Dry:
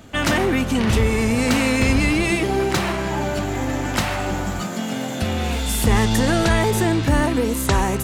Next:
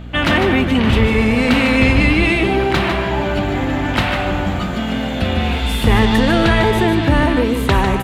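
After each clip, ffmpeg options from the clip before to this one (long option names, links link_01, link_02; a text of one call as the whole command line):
ffmpeg -i in.wav -af "aeval=exprs='val(0)+0.02*(sin(2*PI*60*n/s)+sin(2*PI*2*60*n/s)/2+sin(2*PI*3*60*n/s)/3+sin(2*PI*4*60*n/s)/4+sin(2*PI*5*60*n/s)/5)':channel_layout=same,highshelf=frequency=4600:width_type=q:width=1.5:gain=-10.5,aecho=1:1:150:0.422,volume=3.5dB" out.wav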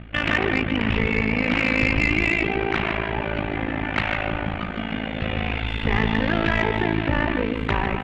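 ffmpeg -i in.wav -af "lowpass=frequency=2400:width_type=q:width=2,tremolo=f=54:d=0.947,asoftclip=type=tanh:threshold=-5.5dB,volume=-4dB" out.wav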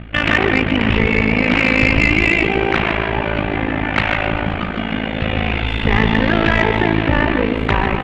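ffmpeg -i in.wav -filter_complex "[0:a]asplit=7[link_01][link_02][link_03][link_04][link_05][link_06][link_07];[link_02]adelay=131,afreqshift=130,volume=-16dB[link_08];[link_03]adelay=262,afreqshift=260,volume=-20.6dB[link_09];[link_04]adelay=393,afreqshift=390,volume=-25.2dB[link_10];[link_05]adelay=524,afreqshift=520,volume=-29.7dB[link_11];[link_06]adelay=655,afreqshift=650,volume=-34.3dB[link_12];[link_07]adelay=786,afreqshift=780,volume=-38.9dB[link_13];[link_01][link_08][link_09][link_10][link_11][link_12][link_13]amix=inputs=7:normalize=0,volume=6.5dB" out.wav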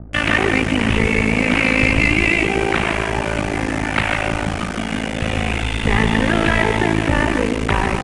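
ffmpeg -i in.wav -filter_complex "[0:a]acrossover=split=350|990[link_01][link_02][link_03];[link_03]acrusher=bits=4:mix=0:aa=0.000001[link_04];[link_01][link_02][link_04]amix=inputs=3:normalize=0,aresample=22050,aresample=44100,volume=-1.5dB" out.wav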